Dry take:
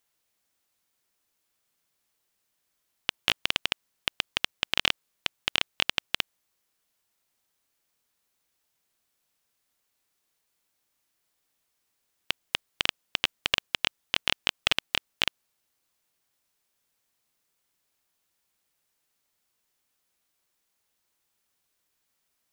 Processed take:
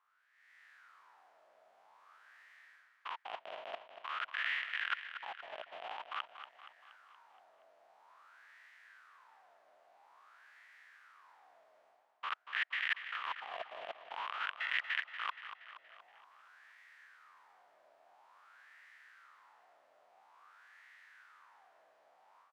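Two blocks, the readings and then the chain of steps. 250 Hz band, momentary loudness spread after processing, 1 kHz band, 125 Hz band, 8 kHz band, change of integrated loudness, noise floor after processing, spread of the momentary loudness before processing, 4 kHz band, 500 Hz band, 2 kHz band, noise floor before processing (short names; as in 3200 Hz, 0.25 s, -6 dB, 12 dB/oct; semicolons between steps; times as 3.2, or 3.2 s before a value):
under -25 dB, 24 LU, -2.5 dB, under -30 dB, under -25 dB, -11.0 dB, -69 dBFS, 8 LU, -18.0 dB, -7.5 dB, -6.0 dB, -78 dBFS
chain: stepped spectrum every 0.1 s; bell 1500 Hz +7.5 dB 3 oct; AGC gain up to 16 dB; sample leveller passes 1; reverse; compressor 5:1, threshold -37 dBFS, peak gain reduction 21 dB; reverse; wah 0.49 Hz 630–1900 Hz, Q 7.9; on a send: feedback echo 0.236 s, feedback 55%, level -10.5 dB; on the sum: gain +14.5 dB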